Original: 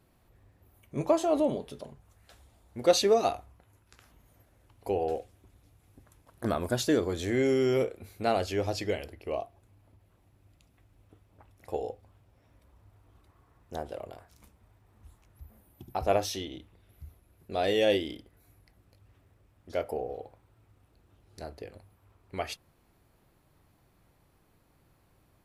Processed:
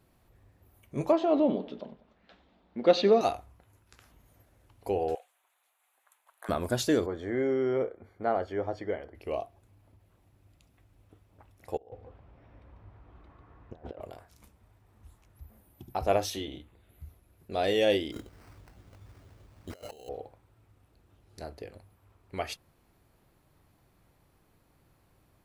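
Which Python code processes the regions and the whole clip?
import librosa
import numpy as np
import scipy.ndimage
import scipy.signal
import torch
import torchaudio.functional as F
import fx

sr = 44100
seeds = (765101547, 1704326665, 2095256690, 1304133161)

y = fx.chain(x, sr, fx.lowpass(hz=4000.0, slope=24),
    fx.low_shelf_res(hz=150.0, db=-8.5, q=3.0),
    fx.echo_feedback(ms=96, feedback_pct=51, wet_db=-18.5), at=(1.12, 3.21))
y = fx.chain(y, sr, fx.highpass(hz=790.0, slope=24),
    fx.peak_eq(hz=5200.0, db=-13.0, octaves=0.46), at=(5.15, 6.49))
y = fx.chain(y, sr, fx.savgol(points=41),
    fx.low_shelf(hz=210.0, db=-9.0), at=(7.06, 9.15))
y = fx.chain(y, sr, fx.lowpass(hz=2400.0, slope=12),
    fx.over_compress(threshold_db=-44.0, ratio=-0.5),
    fx.echo_single(ms=145, db=-6.0), at=(11.77, 14.01))
y = fx.chain(y, sr, fx.peak_eq(hz=5400.0, db=-11.5, octaves=0.33),
    fx.doubler(ms=14.0, db=-7.5), at=(16.3, 17.04))
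y = fx.chain(y, sr, fx.over_compress(threshold_db=-46.0, ratio=-1.0),
    fx.sample_hold(seeds[0], rate_hz=3500.0, jitter_pct=0), at=(18.12, 20.09))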